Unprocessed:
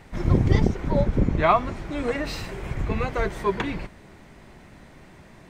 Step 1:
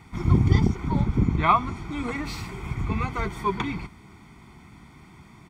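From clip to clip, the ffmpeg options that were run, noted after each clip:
ffmpeg -i in.wav -af "highpass=55,aecho=1:1:0.9:0.83,volume=-3dB" out.wav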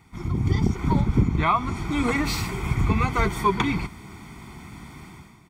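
ffmpeg -i in.wav -af "highshelf=frequency=7800:gain=7.5,alimiter=limit=-16dB:level=0:latency=1:release=300,dynaudnorm=framelen=110:gausssize=7:maxgain=13dB,volume=-6dB" out.wav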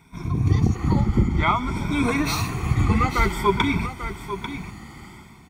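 ffmpeg -i in.wav -af "afftfilt=real='re*pow(10,11/40*sin(2*PI*(1.6*log(max(b,1)*sr/1024/100)/log(2)-(0.53)*(pts-256)/sr)))':imag='im*pow(10,11/40*sin(2*PI*(1.6*log(max(b,1)*sr/1024/100)/log(2)-(0.53)*(pts-256)/sr)))':win_size=1024:overlap=0.75,aecho=1:1:843:0.299" out.wav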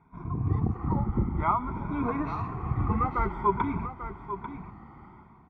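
ffmpeg -i in.wav -af "lowpass=frequency=1100:width_type=q:width=1.8,volume=-8dB" out.wav

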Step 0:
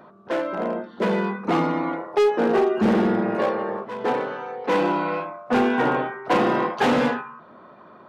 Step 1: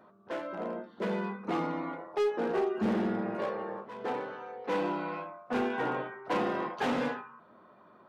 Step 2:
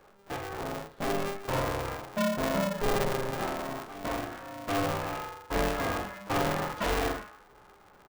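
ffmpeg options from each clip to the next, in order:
ffmpeg -i in.wav -af "flanger=delay=9.4:depth=2.1:regen=-56:speed=0.66:shape=triangular,volume=-6.5dB" out.wav
ffmpeg -i in.wav -filter_complex "[0:a]asplit=2[link_01][link_02];[link_02]adelay=45,volume=-5dB[link_03];[link_01][link_03]amix=inputs=2:normalize=0,aeval=exprs='val(0)*sgn(sin(2*PI*200*n/s))':channel_layout=same" out.wav

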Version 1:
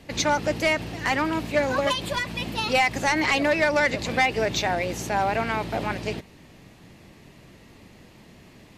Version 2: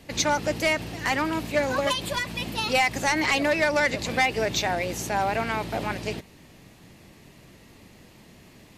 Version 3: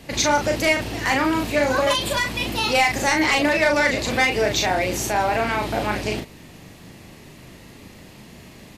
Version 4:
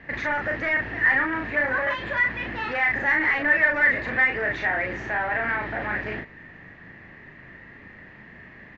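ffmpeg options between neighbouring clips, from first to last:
ffmpeg -i in.wav -af "highshelf=frequency=6600:gain=7,volume=-1.5dB" out.wav
ffmpeg -i in.wav -filter_complex "[0:a]asplit=2[link_01][link_02];[link_02]alimiter=limit=-22dB:level=0:latency=1:release=32,volume=-0.5dB[link_03];[link_01][link_03]amix=inputs=2:normalize=0,asplit=2[link_04][link_05];[link_05]adelay=38,volume=-4dB[link_06];[link_04][link_06]amix=inputs=2:normalize=0" out.wav
ffmpeg -i in.wav -af "aresample=16000,asoftclip=type=tanh:threshold=-19.5dB,aresample=44100,lowpass=frequency=1800:width_type=q:width=8.3,volume=-6dB" out.wav

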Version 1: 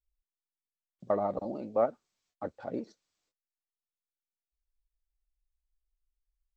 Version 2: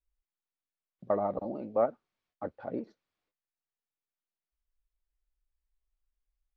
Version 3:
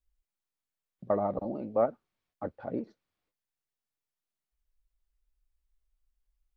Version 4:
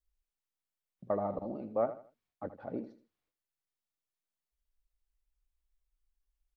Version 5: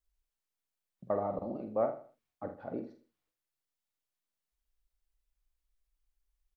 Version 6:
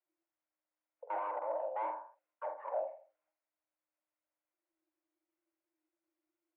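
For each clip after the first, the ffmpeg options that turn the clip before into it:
ffmpeg -i in.wav -af "lowpass=2700" out.wav
ffmpeg -i in.wav -af "lowshelf=frequency=200:gain=6" out.wav
ffmpeg -i in.wav -af "aecho=1:1:80|160|240:0.224|0.0694|0.0215,volume=-4.5dB" out.wav
ffmpeg -i in.wav -filter_complex "[0:a]asplit=2[link_01][link_02];[link_02]adelay=47,volume=-8dB[link_03];[link_01][link_03]amix=inputs=2:normalize=0" out.wav
ffmpeg -i in.wav -filter_complex "[0:a]asplit=2[link_01][link_02];[link_02]highpass=frequency=720:poles=1,volume=24dB,asoftclip=type=tanh:threshold=-19dB[link_03];[link_01][link_03]amix=inputs=2:normalize=0,lowpass=frequency=1000:poles=1,volume=-6dB,afreqshift=310,highpass=260,equalizer=frequency=270:width_type=q:width=4:gain=8,equalizer=frequency=390:width_type=q:width=4:gain=-10,equalizer=frequency=590:width_type=q:width=4:gain=8,equalizer=frequency=830:width_type=q:width=4:gain=-4,equalizer=frequency=1200:width_type=q:width=4:gain=-6,equalizer=frequency=1700:width_type=q:width=4:gain=-7,lowpass=frequency=2100:width=0.5412,lowpass=frequency=2100:width=1.3066,volume=-7dB" out.wav

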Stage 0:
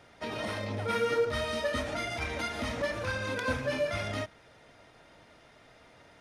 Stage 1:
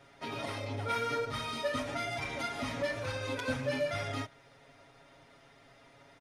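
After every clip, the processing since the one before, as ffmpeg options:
ffmpeg -i in.wav -af "aecho=1:1:7.3:0.91,volume=-4.5dB" out.wav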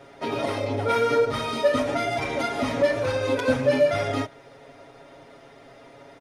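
ffmpeg -i in.wav -af "equalizer=frequency=440:width_type=o:width=2:gain=9,volume=6dB" out.wav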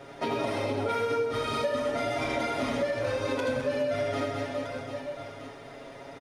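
ffmpeg -i in.wav -filter_complex "[0:a]asplit=2[link_01][link_02];[link_02]aecho=0:1:80|208|412.8|740.5|1265:0.631|0.398|0.251|0.158|0.1[link_03];[link_01][link_03]amix=inputs=2:normalize=0,acompressor=threshold=-28dB:ratio=6,volume=1.5dB" out.wav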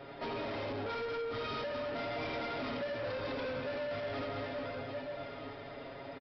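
ffmpeg -i in.wav -af "aresample=11025,asoftclip=type=tanh:threshold=-33.5dB,aresample=44100,aecho=1:1:1153:0.237,volume=-2dB" out.wav

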